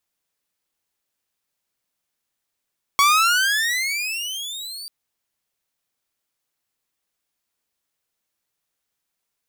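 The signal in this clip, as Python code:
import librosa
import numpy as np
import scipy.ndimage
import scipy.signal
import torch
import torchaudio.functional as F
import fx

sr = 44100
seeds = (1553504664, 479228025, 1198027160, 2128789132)

y = fx.riser_tone(sr, length_s=1.89, level_db=-9.5, wave='saw', hz=1110.0, rise_st=25.0, swell_db=-19.5)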